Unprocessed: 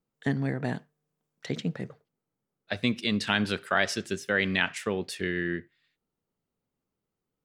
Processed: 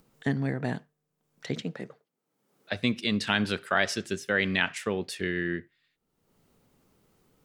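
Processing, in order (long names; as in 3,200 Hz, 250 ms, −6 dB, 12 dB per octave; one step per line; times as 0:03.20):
0:01.62–0:02.72: high-pass filter 220 Hz 12 dB per octave
upward compression, threshold −49 dBFS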